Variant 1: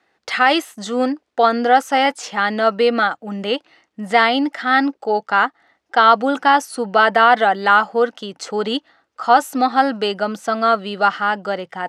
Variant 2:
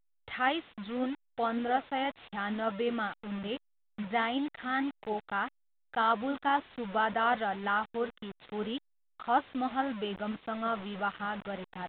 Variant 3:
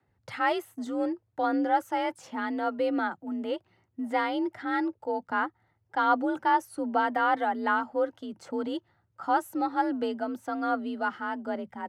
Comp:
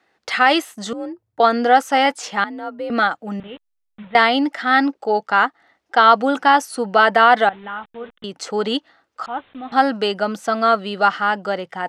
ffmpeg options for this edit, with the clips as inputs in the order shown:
-filter_complex "[2:a]asplit=2[a][b];[1:a]asplit=3[c][d][e];[0:a]asplit=6[f][g][h][i][j][k];[f]atrim=end=0.932[l];[a]atrim=start=0.928:end=1.402[m];[g]atrim=start=1.398:end=2.442[n];[b]atrim=start=2.438:end=2.902[o];[h]atrim=start=2.898:end=3.402[p];[c]atrim=start=3.398:end=4.152[q];[i]atrim=start=4.148:end=7.492[r];[d]atrim=start=7.488:end=8.242[s];[j]atrim=start=8.238:end=9.262[t];[e]atrim=start=9.258:end=9.722[u];[k]atrim=start=9.718[v];[l][m]acrossfade=d=0.004:c1=hsin:c2=hsin[w];[w][n]acrossfade=d=0.004:c1=hsin:c2=hsin[x];[x][o]acrossfade=d=0.004:c1=hsin:c2=hsin[y];[y][p]acrossfade=d=0.004:c1=hsin:c2=hsin[z];[z][q]acrossfade=d=0.004:c1=hsin:c2=hsin[aa];[aa][r]acrossfade=d=0.004:c1=hsin:c2=hsin[ab];[ab][s]acrossfade=d=0.004:c1=hsin:c2=hsin[ac];[ac][t]acrossfade=d=0.004:c1=hsin:c2=hsin[ad];[ad][u]acrossfade=d=0.004:c1=hsin:c2=hsin[ae];[ae][v]acrossfade=d=0.004:c1=hsin:c2=hsin"

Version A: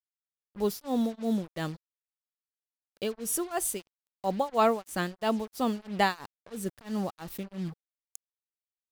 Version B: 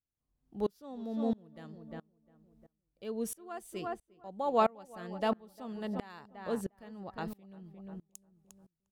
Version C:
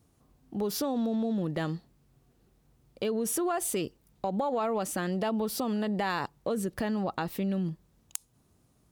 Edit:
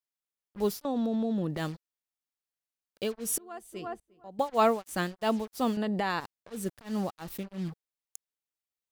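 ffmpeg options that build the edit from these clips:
-filter_complex "[2:a]asplit=2[a][b];[0:a]asplit=4[c][d][e][f];[c]atrim=end=0.852[g];[a]atrim=start=0.848:end=1.572[h];[d]atrim=start=1.568:end=3.382[i];[1:a]atrim=start=3.378:end=4.392[j];[e]atrim=start=4.388:end=5.772[k];[b]atrim=start=5.768:end=6.202[l];[f]atrim=start=6.198[m];[g][h]acrossfade=d=0.004:c1=hsin:c2=hsin[n];[n][i]acrossfade=d=0.004:c1=hsin:c2=hsin[o];[o][j]acrossfade=d=0.004:c1=hsin:c2=hsin[p];[p][k]acrossfade=d=0.004:c1=hsin:c2=hsin[q];[q][l]acrossfade=d=0.004:c1=hsin:c2=hsin[r];[r][m]acrossfade=d=0.004:c1=hsin:c2=hsin"

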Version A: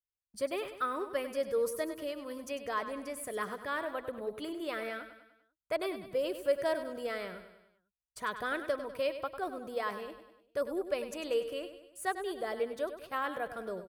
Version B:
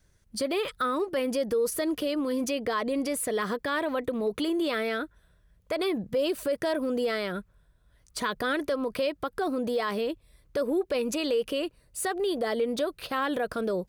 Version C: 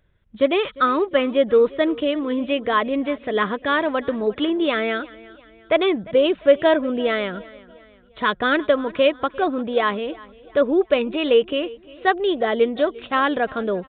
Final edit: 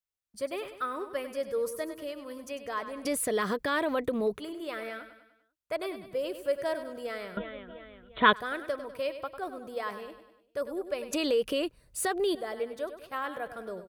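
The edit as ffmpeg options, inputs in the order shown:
-filter_complex "[1:a]asplit=2[a][b];[0:a]asplit=4[c][d][e][f];[c]atrim=end=3.052[g];[a]atrim=start=3.048:end=4.382[h];[d]atrim=start=4.378:end=7.372[i];[2:a]atrim=start=7.368:end=8.332[j];[e]atrim=start=8.328:end=11.132[k];[b]atrim=start=11.128:end=12.352[l];[f]atrim=start=12.348[m];[g][h]acrossfade=d=0.004:c1=hsin:c2=hsin[n];[n][i]acrossfade=d=0.004:c1=hsin:c2=hsin[o];[o][j]acrossfade=d=0.004:c1=hsin:c2=hsin[p];[p][k]acrossfade=d=0.004:c1=hsin:c2=hsin[q];[q][l]acrossfade=d=0.004:c1=hsin:c2=hsin[r];[r][m]acrossfade=d=0.004:c1=hsin:c2=hsin"

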